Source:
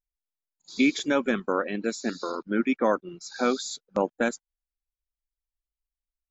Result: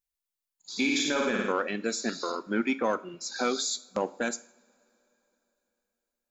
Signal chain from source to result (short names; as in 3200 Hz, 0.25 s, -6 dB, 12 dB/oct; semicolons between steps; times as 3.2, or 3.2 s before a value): in parallel at -7 dB: soft clip -21.5 dBFS, distortion -10 dB; on the sum: tilt +1.5 dB/oct; 0.74–1.52 flutter echo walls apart 9.4 m, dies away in 0.83 s; limiter -15 dBFS, peak gain reduction 5.5 dB; on a send at -13 dB: reverb, pre-delay 3 ms; on the sum: gain -2.5 dB